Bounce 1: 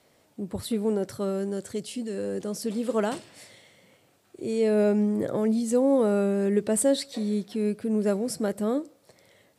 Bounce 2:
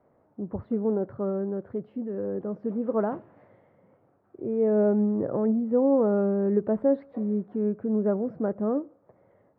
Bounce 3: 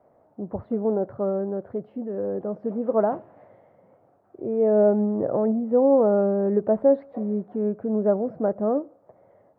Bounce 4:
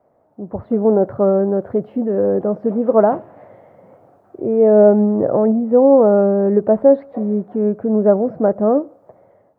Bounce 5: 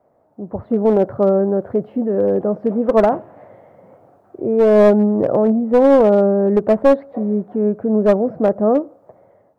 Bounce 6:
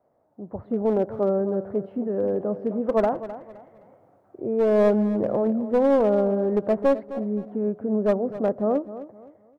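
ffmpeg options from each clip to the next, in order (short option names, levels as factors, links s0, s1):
-af "lowpass=f=1300:w=0.5412,lowpass=f=1300:w=1.3066"
-af "equalizer=f=680:w=1.6:g=8.5"
-af "dynaudnorm=f=260:g=5:m=4.22"
-af "aeval=exprs='clip(val(0),-1,0.299)':c=same"
-af "aecho=1:1:259|518|777:0.2|0.0599|0.018,volume=0.398"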